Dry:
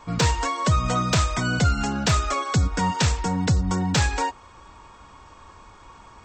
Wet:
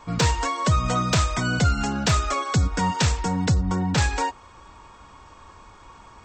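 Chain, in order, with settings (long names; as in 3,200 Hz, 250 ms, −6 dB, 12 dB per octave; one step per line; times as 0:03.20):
0:03.54–0:03.98: high-shelf EQ 3,900 Hz −9 dB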